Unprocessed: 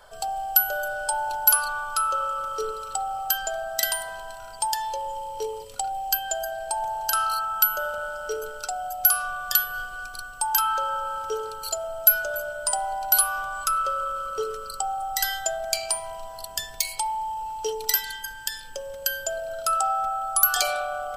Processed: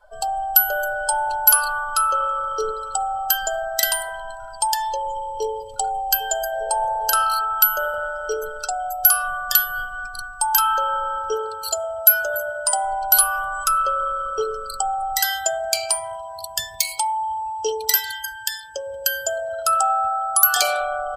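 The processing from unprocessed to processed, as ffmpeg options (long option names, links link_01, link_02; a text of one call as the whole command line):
ffmpeg -i in.wav -filter_complex "[0:a]asplit=2[link_01][link_02];[link_02]afade=type=in:start_time=5.01:duration=0.01,afade=type=out:start_time=5.79:duration=0.01,aecho=0:1:400|800|1200|1600|2000|2400|2800|3200|3600:0.211349|0.147944|0.103561|0.0724927|0.0507449|0.0355214|0.024865|0.0174055|0.0121838[link_03];[link_01][link_03]amix=inputs=2:normalize=0,asettb=1/sr,asplit=3[link_04][link_05][link_06];[link_04]atrim=end=6.534[link_07];[link_05]atrim=start=6.53:end=7.23,asetpts=PTS-STARTPTS,afade=type=in:duration=0.004:curve=qsin,afade=type=out:start_time=0.696:duration=0.004:curve=qsin,equalizer=frequency=520:width_type=o:width=0.34:gain=12.5[link_08];[link_06]atrim=start=7.226[link_09];[link_07][link_08]acrossfade=duration=0.004:curve1=hsin:curve2=qsin[link_10];[link_10][link_09]acrossfade=duration=0.004:curve1=qsin:curve2=hsin,asettb=1/sr,asplit=3[link_11][link_12][link_13];[link_11]atrim=end=11.354[link_14];[link_12]atrim=start=11.35:end=12.85,asetpts=PTS-STARTPTS,afade=type=in:duration=0.004:curve=qsin,afade=type=out:start_time=1.496:duration=0.004:curve=qsin,highpass=51[link_15];[link_13]atrim=start=12.846[link_16];[link_14][link_15]acrossfade=duration=0.004:curve1=hsin:curve2=qsin[link_17];[link_17][link_16]acrossfade=duration=0.004:curve1=qsin:curve2=hsin,asettb=1/sr,asplit=3[link_18][link_19][link_20];[link_18]atrim=end=15.194[link_21];[link_19]atrim=start=15.19:end=20.79,asetpts=PTS-STARTPTS,afade=type=in:duration=0.004:curve=qsin,afade=type=out:start_time=5.596:duration=0.004:curve=qsin,highpass=frequency=45:width=0.5412,highpass=frequency=45:width=1.3066[link_22];[link_20]atrim=start=20.786[link_23];[link_21][link_22]acrossfade=duration=0.004:curve1=hsin:curve2=qsin[link_24];[link_24][link_23]acrossfade=duration=0.004:curve1=qsin:curve2=hsin,afftdn=noise_reduction=20:noise_floor=-43,acontrast=26" out.wav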